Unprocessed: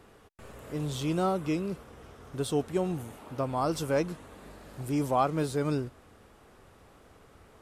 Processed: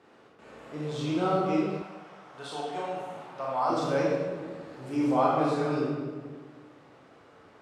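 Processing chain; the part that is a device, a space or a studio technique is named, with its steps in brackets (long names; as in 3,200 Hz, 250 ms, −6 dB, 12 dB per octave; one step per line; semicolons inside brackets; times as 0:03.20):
supermarket ceiling speaker (band-pass filter 200–5,100 Hz; convolution reverb RT60 1.5 s, pre-delay 22 ms, DRR −6 dB)
0:01.82–0:03.70: low shelf with overshoot 510 Hz −11 dB, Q 1.5
level −4 dB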